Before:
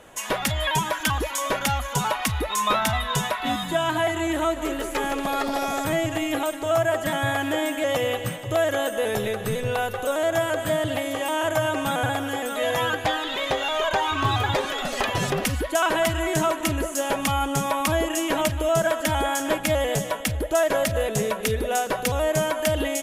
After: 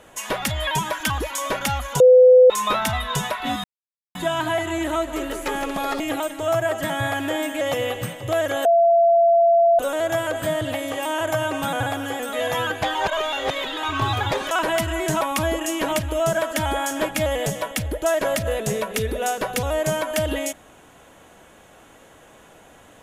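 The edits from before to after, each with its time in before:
0:02.00–0:02.50: beep over 506 Hz −7 dBFS
0:03.64: splice in silence 0.51 s
0:05.49–0:06.23: remove
0:08.88–0:10.02: beep over 679 Hz −12 dBFS
0:13.18–0:14.06: reverse
0:14.74–0:15.78: remove
0:16.48–0:17.70: remove

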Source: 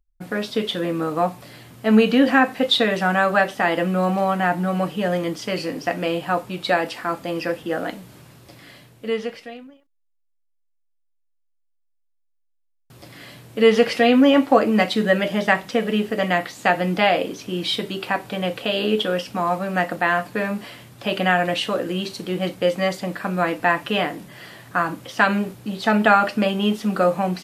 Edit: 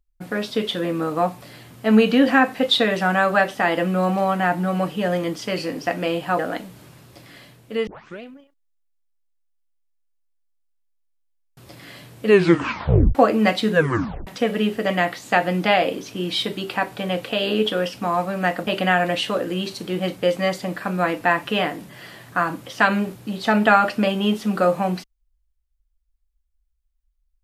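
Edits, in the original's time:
0:06.39–0:07.72: remove
0:09.20: tape start 0.35 s
0:13.59: tape stop 0.89 s
0:15.05: tape stop 0.55 s
0:20.00–0:21.06: remove

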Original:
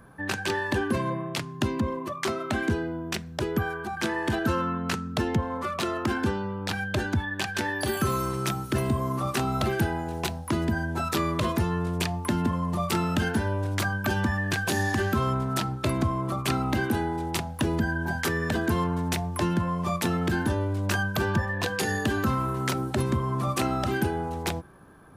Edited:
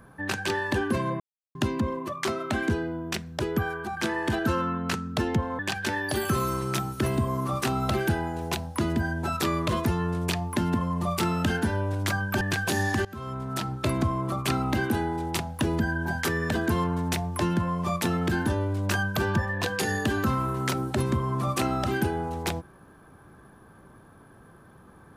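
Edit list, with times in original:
0:01.20–0:01.55: silence
0:05.59–0:07.31: remove
0:14.13–0:14.41: remove
0:15.05–0:15.83: fade in, from −22 dB

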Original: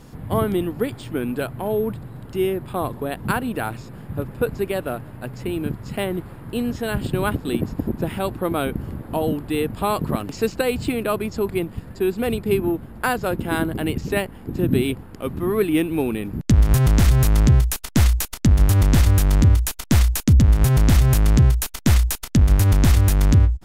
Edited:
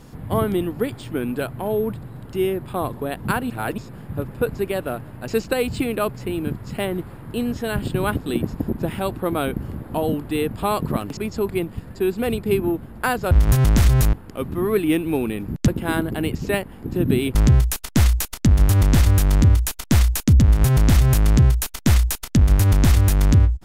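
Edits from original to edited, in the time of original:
0:03.50–0:03.78: reverse
0:10.36–0:11.17: move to 0:05.28
0:13.31–0:14.98: swap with 0:16.53–0:17.35

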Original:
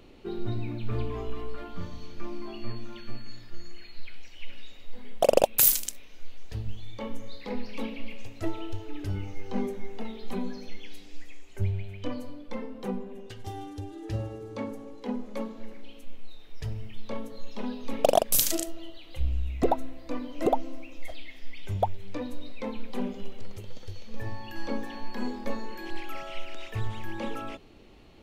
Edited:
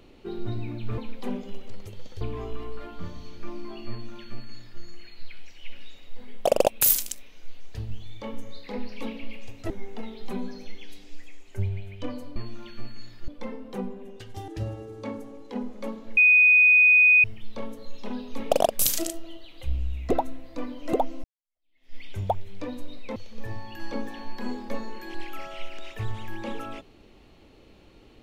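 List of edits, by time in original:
0:02.66–0:03.58: duplicate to 0:12.38
0:08.47–0:09.72: remove
0:13.58–0:14.01: remove
0:15.70–0:16.77: beep over 2,490 Hz −13 dBFS
0:20.77–0:21.49: fade in exponential
0:22.69–0:23.92: move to 0:00.98

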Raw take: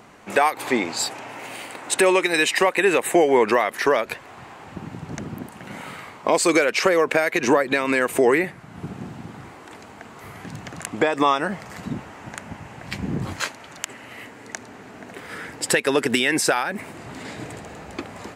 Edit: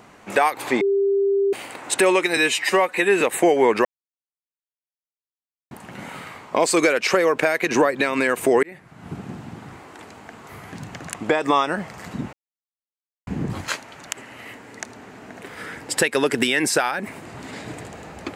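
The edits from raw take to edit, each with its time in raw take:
0:00.81–0:01.53: beep over 396 Hz −16 dBFS
0:02.37–0:02.93: time-stretch 1.5×
0:03.57–0:05.43: silence
0:08.35–0:08.79: fade in linear
0:12.05–0:12.99: silence

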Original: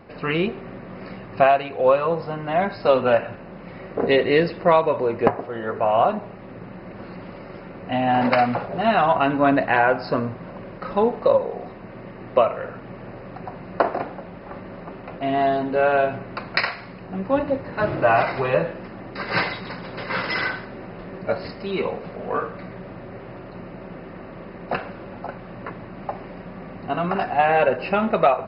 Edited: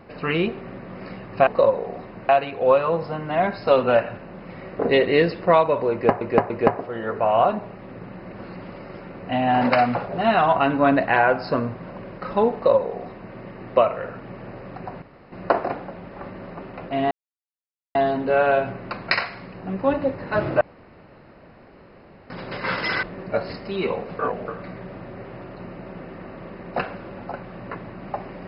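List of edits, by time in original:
0:05.10–0:05.39: repeat, 3 plays
0:11.14–0:11.96: duplicate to 0:01.47
0:13.62: splice in room tone 0.30 s
0:15.41: splice in silence 0.84 s
0:18.07–0:19.76: fill with room tone
0:20.49–0:20.98: remove
0:22.14–0:22.43: reverse

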